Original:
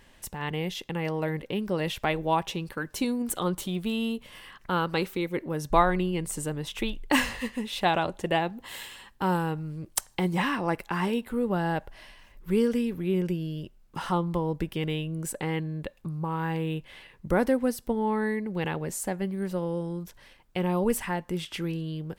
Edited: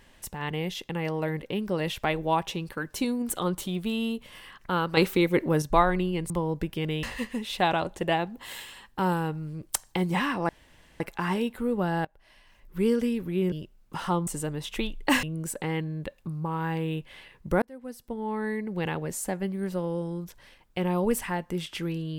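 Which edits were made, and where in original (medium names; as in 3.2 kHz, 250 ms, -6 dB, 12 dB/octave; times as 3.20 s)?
4.97–5.62 s: gain +7 dB
6.30–7.26 s: swap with 14.29–15.02 s
10.72 s: insert room tone 0.51 s
11.77–12.62 s: fade in, from -24 dB
13.24–13.54 s: delete
17.41–18.55 s: fade in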